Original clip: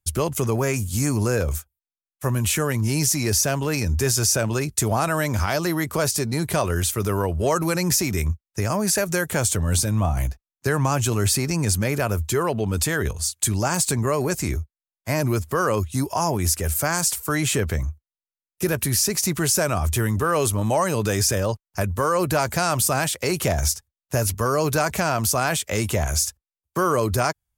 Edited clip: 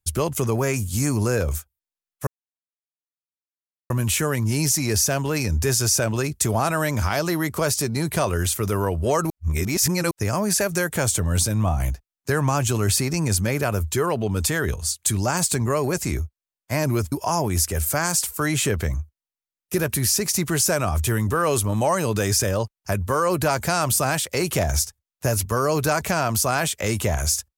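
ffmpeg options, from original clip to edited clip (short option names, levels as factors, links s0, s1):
-filter_complex "[0:a]asplit=5[s0][s1][s2][s3][s4];[s0]atrim=end=2.27,asetpts=PTS-STARTPTS,afade=t=out:st=2.266:d=0.004:c=hsin,apad=pad_dur=1.63[s5];[s1]atrim=start=2.27:end=7.672,asetpts=PTS-STARTPTS,afade=t=in:d=0.004:c=hsin[s6];[s2]atrim=start=7.668:end=8.482,asetpts=PTS-STARTPTS,areverse[s7];[s3]atrim=start=8.478:end=15.492[s8];[s4]atrim=start=16.008[s9];[s5][s6]concat=n=2:v=0:a=1[s10];[s10][s7]acrossfade=d=0.004:c1=hsin:c2=hsin[s11];[s11][s8]acrossfade=d=0.004:c1=hsin:c2=hsin[s12];[s12][s9]acrossfade=d=0.004:c1=hsin:c2=hsin"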